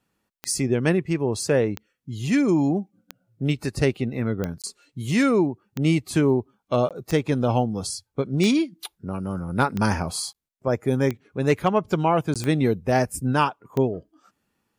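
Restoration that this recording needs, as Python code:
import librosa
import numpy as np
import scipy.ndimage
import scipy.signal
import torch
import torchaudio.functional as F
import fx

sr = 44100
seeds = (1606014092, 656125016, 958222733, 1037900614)

y = fx.fix_declip(x, sr, threshold_db=-9.0)
y = fx.fix_declick_ar(y, sr, threshold=10.0)
y = fx.fix_interpolate(y, sr, at_s=(4.62, 6.89, 10.33, 12.34), length_ms=17.0)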